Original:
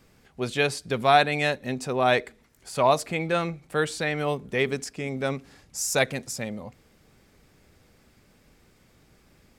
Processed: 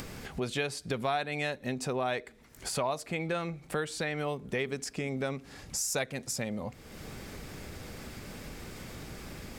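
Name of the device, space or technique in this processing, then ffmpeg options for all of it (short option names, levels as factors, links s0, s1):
upward and downward compression: -af "acompressor=mode=upward:threshold=0.0355:ratio=2.5,acompressor=threshold=0.0316:ratio=4"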